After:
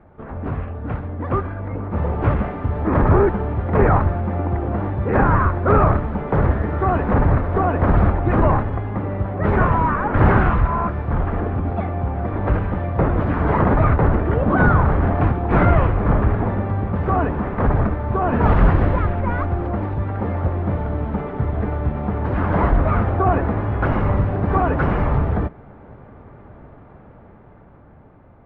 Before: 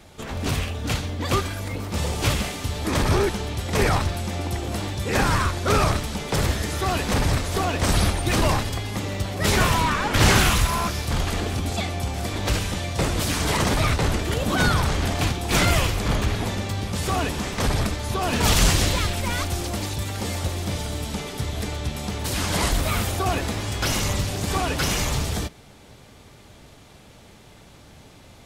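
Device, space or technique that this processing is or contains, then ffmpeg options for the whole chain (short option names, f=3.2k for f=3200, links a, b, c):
action camera in a waterproof case: -af "lowpass=f=1.5k:w=0.5412,lowpass=f=1.5k:w=1.3066,dynaudnorm=f=530:g=7:m=7.5dB" -ar 48000 -c:a aac -b:a 96k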